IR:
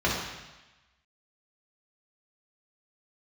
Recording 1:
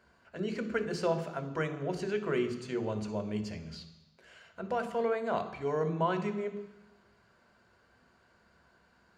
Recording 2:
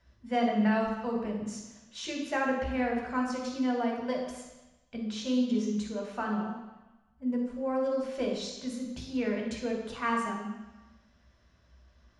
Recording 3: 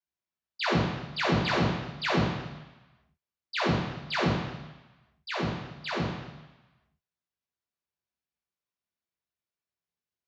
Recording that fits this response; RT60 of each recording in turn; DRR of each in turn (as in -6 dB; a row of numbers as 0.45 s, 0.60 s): 3; 1.1 s, 1.1 s, 1.1 s; 8.5 dB, -1.0 dB, -5.5 dB